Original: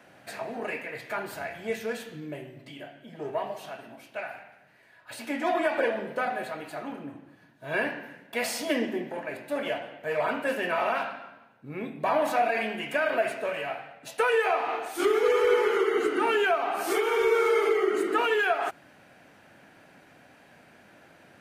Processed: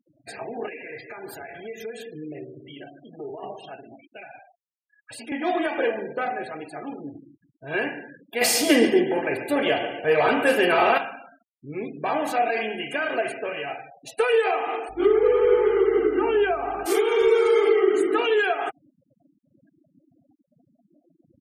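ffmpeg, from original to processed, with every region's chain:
-filter_complex "[0:a]asettb=1/sr,asplit=3[a][b][c];[a]atrim=end=0.684[d];[b]atrim=start=0.68:end=3.43,asetpts=PTS-STARTPTS,afade=t=in:d=0.004:c=qsin,afade=t=out:st=2.746:d=0.004:c=qsin,lowshelf=f=110:g=-7,acompressor=threshold=-35dB:ratio=8:attack=3.2:release=140:knee=1:detection=peak,aecho=1:1:146|292|438|584|730|876:0.237|0.133|0.0744|0.0416|0.0233|0.0131,atrim=end_sample=121275[e];[c]atrim=start=3.426[f];[d][e]acrossfade=d=0.004:c1=hsin:c2=qsin[g];[g][f]acrossfade=d=0.004:c1=qsin:c2=hsin,asettb=1/sr,asplit=3[h][i][j];[h]atrim=end=4.084[k];[i]atrim=start=4.08:end=5.32,asetpts=PTS-STARTPTS,afade=t=in:d=0.004:c=qsin,afade=t=out:st=1.236:d=0.004:c=qsin,adynamicequalizer=threshold=0.00562:dfrequency=1600:dqfactor=0.8:tfrequency=1600:tqfactor=0.8:attack=5:release=100:ratio=0.375:range=2:mode=cutabove:tftype=bell,acrossover=split=280|3000[l][m][n];[m]acompressor=threshold=-38dB:ratio=10:attack=3.2:release=140:knee=2.83:detection=peak[o];[l][o][n]amix=inputs=3:normalize=0[p];[j]atrim=start=5.316[q];[k][p]acrossfade=d=0.004:c1=hsin:c2=qsin[r];[r][q]acrossfade=d=0.004:c1=qsin:c2=hsin,asettb=1/sr,asplit=3[s][t][u];[s]atrim=end=8.414[v];[t]atrim=start=8.41:end=10.98,asetpts=PTS-STARTPTS,afade=t=in:d=0.004:c=qsin,afade=t=out:st=2.566:d=0.004:c=qsin,acontrast=90,aecho=1:1:140|280|420|560|700:0.251|0.113|0.0509|0.0229|0.0103,atrim=end_sample=113337[w];[u]atrim=start=10.976[x];[v][w]acrossfade=d=0.004:c1=hsin:c2=qsin[y];[y][x]acrossfade=d=0.004:c1=qsin:c2=hsin,asettb=1/sr,asplit=3[z][aa][ab];[z]atrim=end=14.894[ac];[aa]atrim=start=14.89:end=16.86,asetpts=PTS-STARTPTS,afade=t=in:d=0.004:c=qsin,afade=t=out:st=1.966:d=0.004:c=qsin,lowpass=f=1.4k:p=1,aeval=exprs='val(0)+0.00224*(sin(2*PI*50*n/s)+sin(2*PI*2*50*n/s)/2+sin(2*PI*3*50*n/s)/3+sin(2*PI*4*50*n/s)/4+sin(2*PI*5*50*n/s)/5)':c=same,aeval=exprs='val(0)*gte(abs(val(0)),0.00501)':c=same[ad];[ab]atrim=start=16.856[ae];[ac][ad]acrossfade=d=0.004:c1=hsin:c2=qsin[af];[af][ae]acrossfade=d=0.004:c1=qsin:c2=hsin,equalizer=f=1.2k:w=0.68:g=-6,afftfilt=real='re*gte(hypot(re,im),0.00708)':imag='im*gte(hypot(re,im),0.00708)':win_size=1024:overlap=0.75,aecho=1:1:2.5:0.44,volume=4.5dB"

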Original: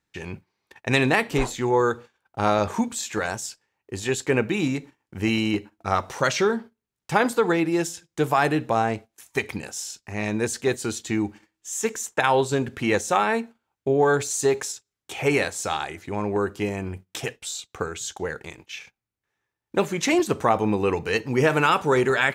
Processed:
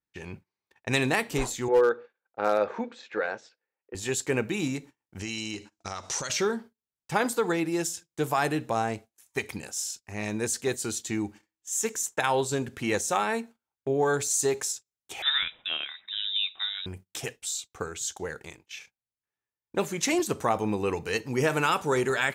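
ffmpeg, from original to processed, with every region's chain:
-filter_complex "[0:a]asettb=1/sr,asplit=3[a][b][c];[a]atrim=end=1.684[d];[b]atrim=start=1.68:end=3.95,asetpts=PTS-STARTPTS,afade=t=in:d=0.004:c=qsin,afade=t=out:st=2.266:d=0.004:c=qsin,highpass=290,equalizer=f=500:t=q:w=4:g=9,equalizer=f=1k:t=q:w=4:g=-4,equalizer=f=1.5k:t=q:w=4:g=4,equalizer=f=3.1k:t=q:w=4:g=-6,lowpass=f=3.4k:w=0.5412,lowpass=f=3.4k:w=1.3066,asoftclip=type=hard:threshold=-9dB[e];[c]atrim=start=3.946[f];[d][e]acrossfade=d=0.004:c1=hsin:c2=qsin[g];[g][f]acrossfade=d=0.004:c1=qsin:c2=hsin,asettb=1/sr,asplit=3[h][i][j];[h]atrim=end=5.194[k];[i]atrim=start=5.19:end=6.3,asetpts=PTS-STARTPTS,afade=t=in:d=0.004:c=qsin,afade=t=out:st=1.106:d=0.004:c=qsin,highshelf=f=2.6k:g=9.5,acompressor=threshold=-27dB:ratio=5:attack=3.2:release=140:knee=1:detection=peak,lowpass=f=6.4k:t=q:w=1.8[l];[j]atrim=start=6.296[m];[k][l]acrossfade=d=0.004:c1=hsin:c2=qsin[n];[n][m]acrossfade=d=0.004:c1=qsin:c2=hsin,asettb=1/sr,asplit=3[o][p][q];[o]atrim=end=15.224[r];[p]atrim=start=15.22:end=16.86,asetpts=PTS-STARTPTS,afade=t=in:d=0.004:c=qsin,afade=t=out:st=1.636:d=0.004:c=qsin,highpass=f=260:p=1,lowpass=f=3.4k:t=q:w=0.5098,lowpass=f=3.4k:t=q:w=0.6013,lowpass=f=3.4k:t=q:w=0.9,lowpass=f=3.4k:t=q:w=2.563,afreqshift=-4000[s];[q]atrim=start=16.856[t];[r][s]acrossfade=d=0.004:c1=hsin:c2=qsin[u];[u][t]acrossfade=d=0.004:c1=qsin:c2=hsin,agate=range=-9dB:threshold=-42dB:ratio=16:detection=peak,adynamicequalizer=threshold=0.00794:dfrequency=4600:dqfactor=0.7:tfrequency=4600:tqfactor=0.7:attack=5:release=100:ratio=0.375:range=4:mode=boostabove:tftype=highshelf,volume=-5.5dB"

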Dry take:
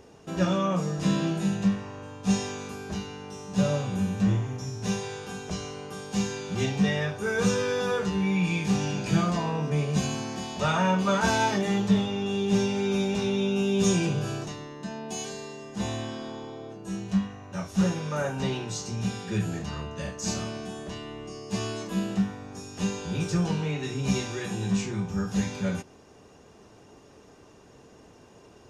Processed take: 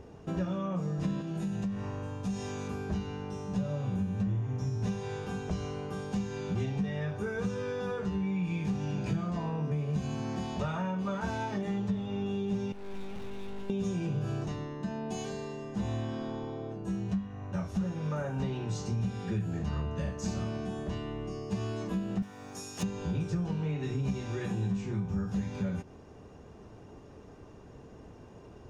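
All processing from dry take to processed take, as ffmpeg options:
-filter_complex "[0:a]asettb=1/sr,asplit=3[a][b][c];[a]atrim=end=1.214[d];[b]atrim=start=1.21:end=2.68,asetpts=PTS-STARTPTS,afade=t=in:d=0.004:c=qsin,afade=t=out:st=1.466:d=0.004:c=qsin,highshelf=f=6.3k:g=10,acompressor=threshold=-34dB:ratio=2.5:attack=3.2:release=140:knee=1:detection=peak[e];[c]atrim=start=2.676[f];[d][e]acrossfade=d=0.004:c1=hsin:c2=qsin[g];[g][f]acrossfade=d=0.004:c1=qsin:c2=hsin,asettb=1/sr,asplit=3[h][i][j];[h]atrim=end=12.724[k];[i]atrim=start=12.72:end=13.7,asetpts=PTS-STARTPTS,afade=t=in:d=0.004:c=qsin,afade=t=out:st=0.976:d=0.004:c=qsin,equalizer=f=180:w=1.2:g=-4,adynamicsmooth=sensitivity=7.5:basefreq=5.2k,aeval=exprs='(tanh(141*val(0)+0.75)-tanh(0.75))/141':c=same[l];[j]atrim=start=13.696[m];[k][l]acrossfade=d=0.004:c1=hsin:c2=qsin[n];[n][m]acrossfade=d=0.004:c1=qsin:c2=hsin,asettb=1/sr,asplit=3[o][p][q];[o]atrim=end=22.224[r];[p]atrim=start=22.22:end=22.83,asetpts=PTS-STARTPTS,afade=t=in:d=0.004:c=qsin,afade=t=out:st=0.606:d=0.004:c=qsin,asoftclip=type=hard:threshold=-23.5dB,aemphasis=mode=production:type=riaa[s];[q]atrim=start=22.826[t];[r][s]acrossfade=d=0.004:c1=hsin:c2=qsin[u];[u][t]acrossfade=d=0.004:c1=qsin:c2=hsin,highshelf=f=2.9k:g=-10.5,acompressor=threshold=-33dB:ratio=6,lowshelf=f=140:g=10"

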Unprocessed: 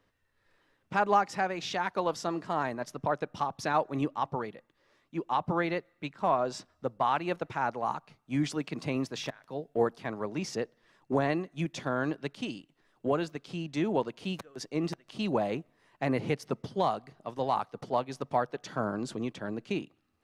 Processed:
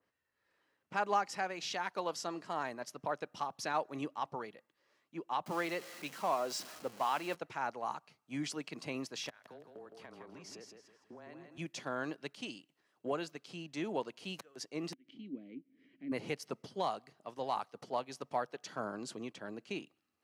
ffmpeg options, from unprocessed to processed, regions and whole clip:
-filter_complex "[0:a]asettb=1/sr,asplit=3[a][b][c];[a]atrim=end=5.464[d];[b]atrim=start=5.46:end=7.35,asetpts=PTS-STARTPTS,afade=t=in:d=0.004:c=qsin,afade=t=out:st=1.886:d=0.004:c=qsin,aeval=exprs='val(0)+0.5*0.0112*sgn(val(0))':c=same,highpass=150[e];[c]atrim=start=7.346[f];[d][e]acrossfade=d=0.004:c1=hsin:c2=qsin[g];[g][f]acrossfade=d=0.004:c1=qsin:c2=hsin,asettb=1/sr,asplit=3[h][i][j];[h]atrim=end=9.294[k];[i]atrim=start=9.29:end=11.58,asetpts=PTS-STARTPTS,afade=t=in:d=0.004:c=qsin,afade=t=out:st=2.286:d=0.004:c=qsin,acompressor=threshold=-39dB:ratio=12:attack=3.2:release=140:knee=1:detection=peak,afreqshift=-18,aecho=1:1:163|326|489|652:0.501|0.175|0.0614|0.0215,atrim=end_sample=100989[l];[j]atrim=start=11.576[m];[k][l]acrossfade=d=0.004:c1=hsin:c2=qsin[n];[n][m]acrossfade=d=0.004:c1=qsin:c2=hsin,asettb=1/sr,asplit=3[o][p][q];[o]atrim=end=14.934[r];[p]atrim=start=14.93:end=16.12,asetpts=PTS-STARTPTS,afade=t=in:d=0.004:c=qsin,afade=t=out:st=1.186:d=0.004:c=qsin,asplit=3[s][t][u];[s]bandpass=f=270:t=q:w=8,volume=0dB[v];[t]bandpass=f=2.29k:t=q:w=8,volume=-6dB[w];[u]bandpass=f=3.01k:t=q:w=8,volume=-9dB[x];[v][w][x]amix=inputs=3:normalize=0,tiltshelf=f=680:g=7.5,acompressor=mode=upward:threshold=-39dB:ratio=2.5:attack=3.2:release=140:knee=2.83:detection=peak[y];[q]atrim=start=16.116[z];[r][y]acrossfade=d=0.004:c1=hsin:c2=qsin[aa];[aa][z]acrossfade=d=0.004:c1=qsin:c2=hsin,highpass=f=270:p=1,bandreject=f=3.6k:w=15,adynamicequalizer=threshold=0.00501:dfrequency=2500:dqfactor=0.7:tfrequency=2500:tqfactor=0.7:attack=5:release=100:ratio=0.375:range=3:mode=boostabove:tftype=highshelf,volume=-6.5dB"

